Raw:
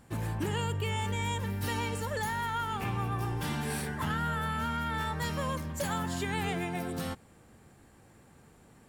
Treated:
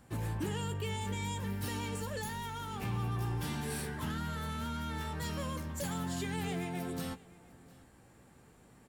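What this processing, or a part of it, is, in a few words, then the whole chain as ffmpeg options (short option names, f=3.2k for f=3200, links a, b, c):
one-band saturation: -filter_complex "[0:a]asplit=2[a][b];[b]adelay=16,volume=-10.5dB[c];[a][c]amix=inputs=2:normalize=0,acrossover=split=460|3300[d][e][f];[e]asoftclip=type=tanh:threshold=-39.5dB[g];[d][g][f]amix=inputs=3:normalize=0,aecho=1:1:704:0.0708,volume=-2.5dB"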